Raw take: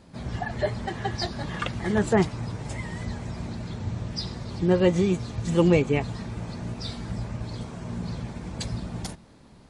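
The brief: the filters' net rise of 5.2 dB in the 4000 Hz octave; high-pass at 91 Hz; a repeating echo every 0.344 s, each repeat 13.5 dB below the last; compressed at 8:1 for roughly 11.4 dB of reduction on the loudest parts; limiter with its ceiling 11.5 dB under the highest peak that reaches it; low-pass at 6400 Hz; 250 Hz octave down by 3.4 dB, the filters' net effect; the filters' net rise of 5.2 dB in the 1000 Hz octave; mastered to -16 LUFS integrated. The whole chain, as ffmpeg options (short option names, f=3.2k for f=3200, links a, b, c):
-af "highpass=91,lowpass=6.4k,equalizer=f=250:t=o:g=-6,equalizer=f=1k:t=o:g=7,equalizer=f=4k:t=o:g=7,acompressor=threshold=-27dB:ratio=8,alimiter=level_in=3dB:limit=-24dB:level=0:latency=1,volume=-3dB,aecho=1:1:344|688:0.211|0.0444,volume=20.5dB"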